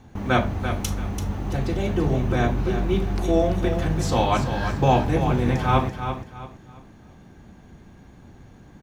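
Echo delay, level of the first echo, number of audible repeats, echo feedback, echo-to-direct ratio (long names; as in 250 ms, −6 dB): 337 ms, −8.5 dB, 3, 30%, −8.0 dB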